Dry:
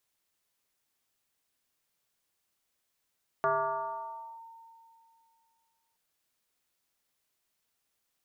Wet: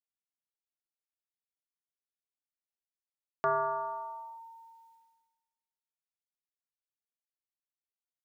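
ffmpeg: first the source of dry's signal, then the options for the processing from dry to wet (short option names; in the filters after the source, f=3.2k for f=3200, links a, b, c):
-f lavfi -i "aevalsrc='0.0708*pow(10,-3*t/2.57)*sin(2*PI*912*t+1.8*clip(1-t/0.97,0,1)*sin(2*PI*0.28*912*t))':d=2.52:s=44100"
-af "agate=range=-33dB:threshold=-60dB:ratio=3:detection=peak"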